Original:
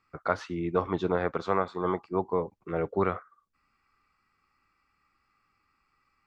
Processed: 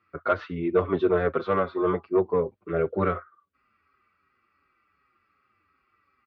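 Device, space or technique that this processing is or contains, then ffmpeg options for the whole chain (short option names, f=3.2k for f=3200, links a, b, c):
barber-pole flanger into a guitar amplifier: -filter_complex "[0:a]asplit=2[a][b];[b]adelay=6.1,afreqshift=-2.7[c];[a][c]amix=inputs=2:normalize=1,asoftclip=type=tanh:threshold=-18dB,highpass=79,equalizer=f=84:t=q:w=4:g=5,equalizer=f=140:t=q:w=4:g=-5,equalizer=f=380:t=q:w=4:g=6,equalizer=f=590:t=q:w=4:g=4,equalizer=f=860:t=q:w=4:g=-8,equalizer=f=1.4k:t=q:w=4:g=4,lowpass=f=3.7k:w=0.5412,lowpass=f=3.7k:w=1.3066,volume=5.5dB"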